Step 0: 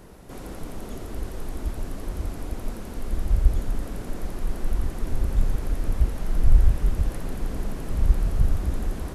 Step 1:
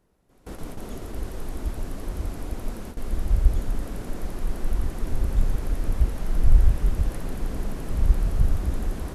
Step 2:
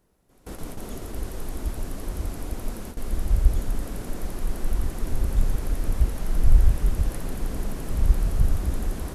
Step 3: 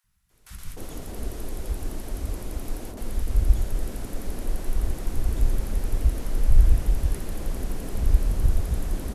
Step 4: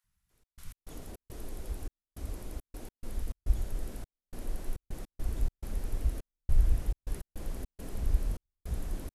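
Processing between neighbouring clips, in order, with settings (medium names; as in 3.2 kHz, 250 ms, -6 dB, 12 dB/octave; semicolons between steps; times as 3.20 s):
gate with hold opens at -25 dBFS
treble shelf 5.7 kHz +6 dB
three bands offset in time highs, lows, mids 40/300 ms, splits 160/1200 Hz
trance gate "xxx.x.xx.xxxx.." 104 bpm -60 dB; trim -8.5 dB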